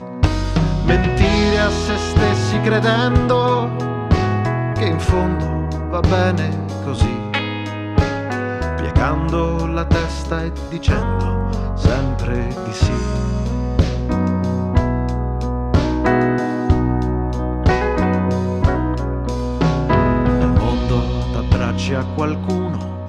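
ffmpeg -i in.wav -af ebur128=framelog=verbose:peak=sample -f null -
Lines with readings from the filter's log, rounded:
Integrated loudness:
  I:         -18.6 LUFS
  Threshold: -28.6 LUFS
Loudness range:
  LRA:         3.4 LU
  Threshold: -38.7 LUFS
  LRA low:   -20.0 LUFS
  LRA high:  -16.6 LUFS
Sample peak:
  Peak:       -3.9 dBFS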